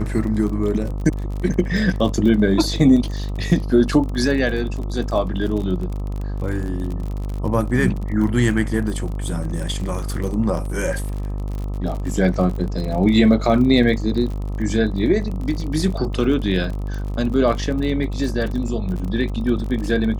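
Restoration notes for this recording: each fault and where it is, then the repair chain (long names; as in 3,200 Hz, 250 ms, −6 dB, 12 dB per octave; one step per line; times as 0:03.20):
mains buzz 50 Hz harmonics 26 −25 dBFS
surface crackle 38 per second −27 dBFS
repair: click removal
hum removal 50 Hz, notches 26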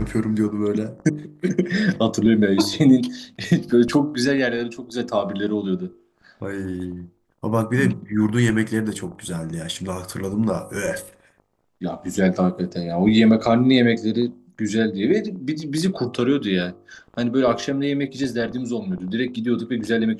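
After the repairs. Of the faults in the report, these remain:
none of them is left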